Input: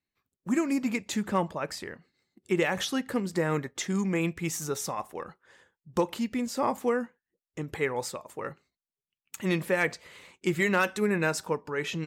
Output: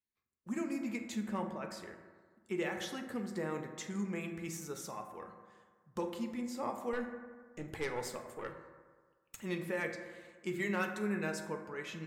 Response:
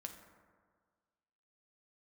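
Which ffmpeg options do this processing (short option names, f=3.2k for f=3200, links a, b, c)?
-filter_complex "[0:a]asettb=1/sr,asplit=3[a][b][c];[a]atrim=end=6.934[d];[b]atrim=start=6.93:end=9.38,asetpts=PTS-STARTPTS,afade=t=in:d=0.004:c=qsin,afade=t=out:st=2.446:d=0.004:c=qsin,aeval=exprs='0.168*(cos(1*acos(clip(val(0)/0.168,-1,1)))-cos(1*PI/2))+0.0188*(cos(5*acos(clip(val(0)/0.168,-1,1)))-cos(5*PI/2))+0.0266*(cos(6*acos(clip(val(0)/0.168,-1,1)))-cos(6*PI/2))':c=same[e];[c]atrim=start=9.376[f];[d][e]acrossfade=d=0.004:c1=hsin:c2=qsin[g];[g][f]acrossfade=d=0.004:c1=qsin:c2=hsin[h];[1:a]atrim=start_sample=2205,asetrate=48510,aresample=44100[i];[h][i]afir=irnorm=-1:irlink=0,volume=-5.5dB"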